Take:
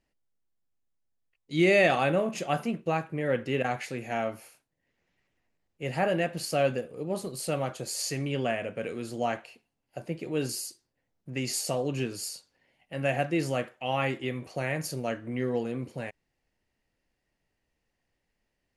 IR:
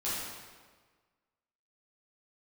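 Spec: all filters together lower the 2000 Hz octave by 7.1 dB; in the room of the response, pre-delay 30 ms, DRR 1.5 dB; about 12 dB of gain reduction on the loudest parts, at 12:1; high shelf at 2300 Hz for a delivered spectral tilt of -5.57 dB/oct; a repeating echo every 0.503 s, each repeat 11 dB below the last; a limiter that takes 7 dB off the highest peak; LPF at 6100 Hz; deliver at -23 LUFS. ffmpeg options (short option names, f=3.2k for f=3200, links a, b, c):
-filter_complex "[0:a]lowpass=6.1k,equalizer=f=2k:t=o:g=-7,highshelf=f=2.3k:g=-3.5,acompressor=threshold=-31dB:ratio=12,alimiter=level_in=4.5dB:limit=-24dB:level=0:latency=1,volume=-4.5dB,aecho=1:1:503|1006|1509:0.282|0.0789|0.0221,asplit=2[a][b];[1:a]atrim=start_sample=2205,adelay=30[c];[b][c]afir=irnorm=-1:irlink=0,volume=-7.5dB[d];[a][d]amix=inputs=2:normalize=0,volume=14dB"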